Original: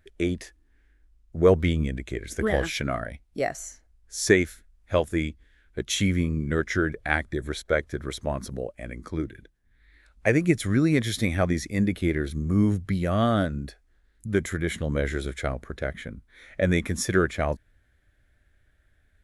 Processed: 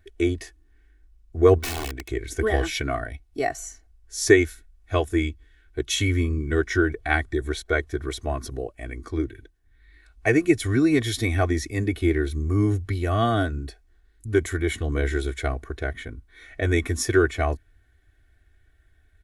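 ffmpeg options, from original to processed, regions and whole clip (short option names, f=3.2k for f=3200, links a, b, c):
-filter_complex "[0:a]asettb=1/sr,asplit=3[a][b][c];[a]atrim=end=1.584[d];[b]atrim=start=1.58:end=2.09,asetpts=PTS-STARTPTS,afade=t=in:d=0.004:c=qsin,afade=t=out:st=0.506:d=0.004:c=qsin,bass=f=250:g=-8,treble=f=4k:g=-4,aeval=exprs='(mod(20*val(0)+1,2)-1)/20':c=same[e];[c]atrim=start=2.086[f];[d][e]acrossfade=d=0.004:c1=hsin:c2=qsin[g];[g][f]acrossfade=d=0.004:c1=qsin:c2=hsin,equalizer=f=82:t=o:w=0.83:g=3,aecho=1:1:2.7:0.95,volume=-1dB"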